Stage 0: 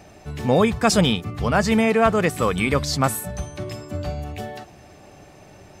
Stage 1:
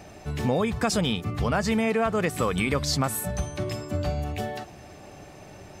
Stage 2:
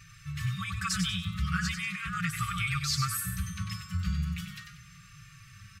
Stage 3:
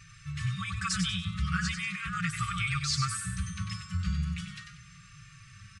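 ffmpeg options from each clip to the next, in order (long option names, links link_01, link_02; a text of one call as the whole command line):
ffmpeg -i in.wav -filter_complex "[0:a]asplit=2[link_01][link_02];[link_02]alimiter=limit=-15dB:level=0:latency=1:release=209,volume=0dB[link_03];[link_01][link_03]amix=inputs=2:normalize=0,acompressor=threshold=-16dB:ratio=4,volume=-5dB" out.wav
ffmpeg -i in.wav -filter_complex "[0:a]asplit=5[link_01][link_02][link_03][link_04][link_05];[link_02]adelay=95,afreqshift=100,volume=-7dB[link_06];[link_03]adelay=190,afreqshift=200,volume=-16.1dB[link_07];[link_04]adelay=285,afreqshift=300,volume=-25.2dB[link_08];[link_05]adelay=380,afreqshift=400,volume=-34.4dB[link_09];[link_01][link_06][link_07][link_08][link_09]amix=inputs=5:normalize=0,afftfilt=real='re*(1-between(b*sr/4096,200,1100))':imag='im*(1-between(b*sr/4096,200,1100))':win_size=4096:overlap=0.75,asplit=2[link_10][link_11];[link_11]adelay=4.5,afreqshift=-0.39[link_12];[link_10][link_12]amix=inputs=2:normalize=1" out.wav
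ffmpeg -i in.wav -af "aresample=22050,aresample=44100" out.wav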